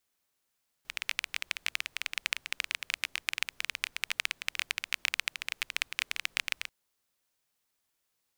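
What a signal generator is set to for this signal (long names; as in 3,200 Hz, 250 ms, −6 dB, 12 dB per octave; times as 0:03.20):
rain-like ticks over hiss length 5.84 s, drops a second 16, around 2,400 Hz, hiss −29 dB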